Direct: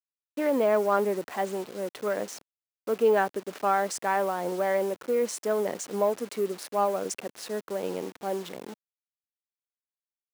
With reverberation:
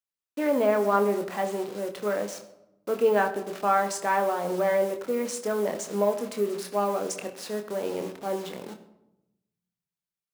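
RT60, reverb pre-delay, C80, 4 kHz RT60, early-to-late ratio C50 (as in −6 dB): 0.90 s, 24 ms, 14.0 dB, 0.55 s, 11.5 dB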